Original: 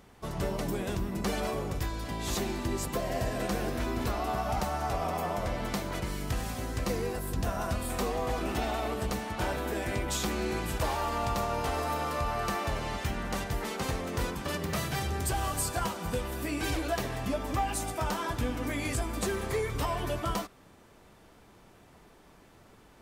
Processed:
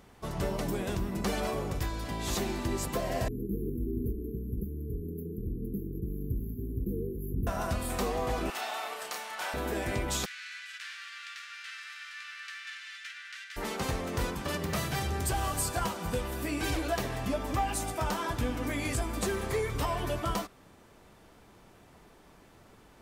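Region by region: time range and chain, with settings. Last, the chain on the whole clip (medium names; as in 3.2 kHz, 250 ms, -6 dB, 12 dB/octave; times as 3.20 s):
3.28–7.47 s: brick-wall FIR band-stop 470–11000 Hz + treble shelf 9.7 kHz -5.5 dB + delay 150 ms -23.5 dB
8.50–9.54 s: high-pass 940 Hz + doubling 32 ms -4 dB
10.24–13.56 s: formants flattened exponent 0.6 + steep high-pass 1.5 kHz 48 dB/octave + tape spacing loss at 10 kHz 24 dB
whole clip: none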